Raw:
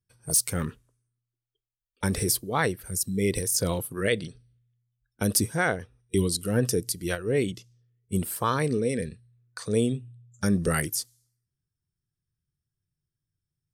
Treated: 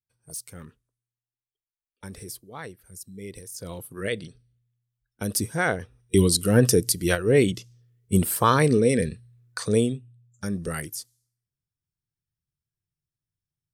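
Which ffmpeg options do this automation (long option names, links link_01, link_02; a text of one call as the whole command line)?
ffmpeg -i in.wav -af "volume=6.5dB,afade=type=in:start_time=3.57:duration=0.48:silence=0.316228,afade=type=in:start_time=5.32:duration=1.02:silence=0.316228,afade=type=out:start_time=9.6:duration=0.41:silence=0.251189" out.wav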